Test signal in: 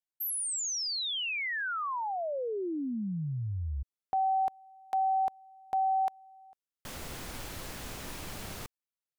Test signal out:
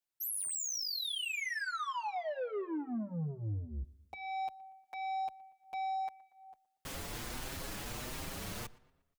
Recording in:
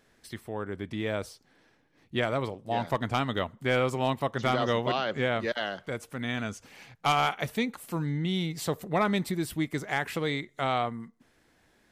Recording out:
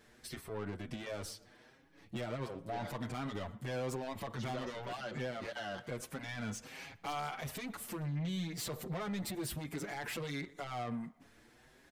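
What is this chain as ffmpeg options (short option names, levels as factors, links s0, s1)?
-filter_complex "[0:a]acompressor=threshold=0.0282:ratio=6:attack=0.22:release=57:knee=1:detection=rms,asoftclip=type=tanh:threshold=0.0126,asplit=2[s0][s1];[s1]adelay=118,lowpass=f=3600:p=1,volume=0.0891,asplit=2[s2][s3];[s3]adelay=118,lowpass=f=3600:p=1,volume=0.52,asplit=2[s4][s5];[s5]adelay=118,lowpass=f=3600:p=1,volume=0.52,asplit=2[s6][s7];[s7]adelay=118,lowpass=f=3600:p=1,volume=0.52[s8];[s2][s4][s6][s8]amix=inputs=4:normalize=0[s9];[s0][s9]amix=inputs=2:normalize=0,asplit=2[s10][s11];[s11]adelay=6.5,afreqshift=1.4[s12];[s10][s12]amix=inputs=2:normalize=1,volume=1.78"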